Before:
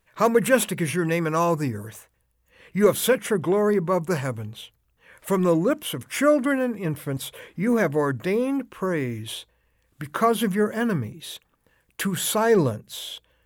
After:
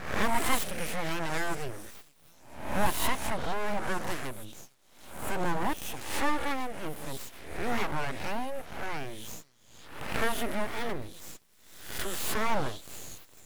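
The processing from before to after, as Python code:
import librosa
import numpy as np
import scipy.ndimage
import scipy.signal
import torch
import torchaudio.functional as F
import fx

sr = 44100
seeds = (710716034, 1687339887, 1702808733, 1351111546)

y = fx.spec_swells(x, sr, rise_s=0.72)
y = fx.echo_stepped(y, sr, ms=459, hz=4100.0, octaves=0.7, feedback_pct=70, wet_db=-10.5)
y = np.abs(y)
y = y * 10.0 ** (-7.5 / 20.0)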